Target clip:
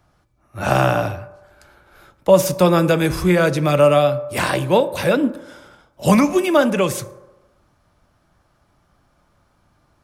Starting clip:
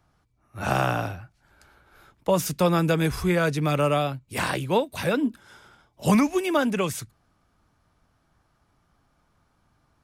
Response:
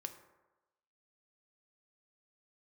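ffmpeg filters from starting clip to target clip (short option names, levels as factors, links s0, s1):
-filter_complex "[0:a]asplit=2[s0][s1];[s1]equalizer=f=580:t=o:w=0.34:g=8[s2];[1:a]atrim=start_sample=2205[s3];[s2][s3]afir=irnorm=-1:irlink=0,volume=1.41[s4];[s0][s4]amix=inputs=2:normalize=0"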